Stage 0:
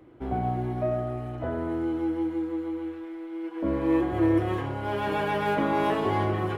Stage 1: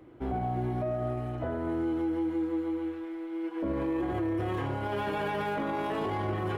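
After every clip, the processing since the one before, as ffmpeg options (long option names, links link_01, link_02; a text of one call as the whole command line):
ffmpeg -i in.wav -af "alimiter=limit=-24dB:level=0:latency=1:release=16" out.wav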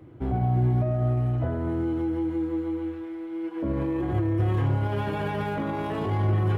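ffmpeg -i in.wav -af "equalizer=frequency=110:width=0.86:gain=13" out.wav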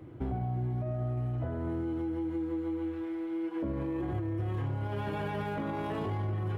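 ffmpeg -i in.wav -af "acompressor=threshold=-31dB:ratio=5" out.wav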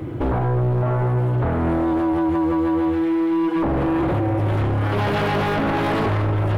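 ffmpeg -i in.wav -af "aeval=exprs='0.0794*sin(PI/2*3.16*val(0)/0.0794)':channel_layout=same,volume=5dB" out.wav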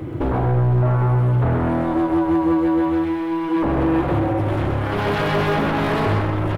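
ffmpeg -i in.wav -af "aecho=1:1:129:0.596" out.wav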